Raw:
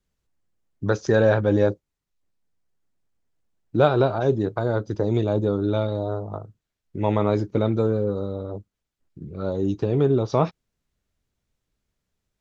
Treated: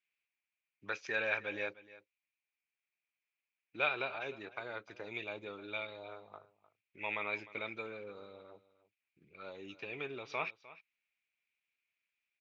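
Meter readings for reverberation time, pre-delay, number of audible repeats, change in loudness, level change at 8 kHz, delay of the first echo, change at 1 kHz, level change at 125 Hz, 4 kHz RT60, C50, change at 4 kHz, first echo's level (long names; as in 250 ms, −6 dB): no reverb audible, no reverb audible, 1, −16.5 dB, can't be measured, 304 ms, −14.5 dB, −34.5 dB, no reverb audible, no reverb audible, −7.0 dB, −18.0 dB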